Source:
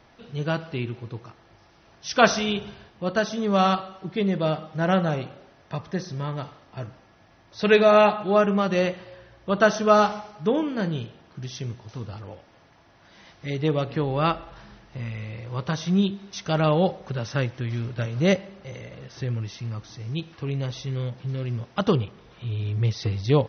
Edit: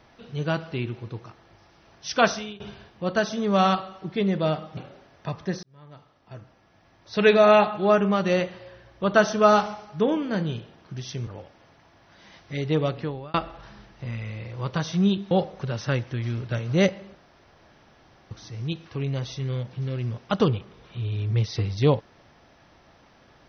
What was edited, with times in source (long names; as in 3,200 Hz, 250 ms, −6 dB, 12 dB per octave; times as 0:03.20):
0:02.08–0:02.60: fade out, to −22.5 dB
0:04.77–0:05.23: remove
0:06.09–0:07.79: fade in
0:11.73–0:12.20: remove
0:13.80–0:14.27: fade out
0:16.24–0:16.78: remove
0:18.62–0:19.78: fill with room tone